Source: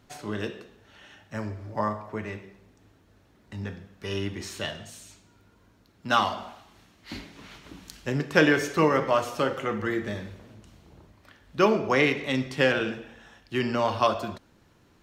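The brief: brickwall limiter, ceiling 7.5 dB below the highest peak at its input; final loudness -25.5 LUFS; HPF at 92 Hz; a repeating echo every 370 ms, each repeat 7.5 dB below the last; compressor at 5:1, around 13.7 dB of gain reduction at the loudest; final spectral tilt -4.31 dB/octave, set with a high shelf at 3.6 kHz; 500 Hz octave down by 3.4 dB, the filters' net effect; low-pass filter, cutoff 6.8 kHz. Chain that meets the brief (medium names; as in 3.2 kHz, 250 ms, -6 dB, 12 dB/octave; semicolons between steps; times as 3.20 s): high-pass 92 Hz; low-pass 6.8 kHz; peaking EQ 500 Hz -4 dB; treble shelf 3.6 kHz -4 dB; compression 5:1, threshold -33 dBFS; peak limiter -27.5 dBFS; feedback delay 370 ms, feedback 42%, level -7.5 dB; trim +14.5 dB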